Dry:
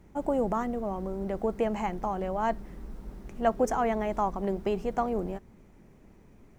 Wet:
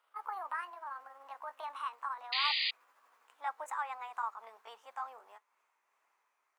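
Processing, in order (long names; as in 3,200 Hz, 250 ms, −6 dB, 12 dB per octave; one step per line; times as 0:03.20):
pitch glide at a constant tempo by +7 semitones ending unshifted
four-pole ladder high-pass 900 Hz, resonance 45%
sound drawn into the spectrogram noise, 0:02.32–0:02.71, 1,800–4,900 Hz −31 dBFS
level −1.5 dB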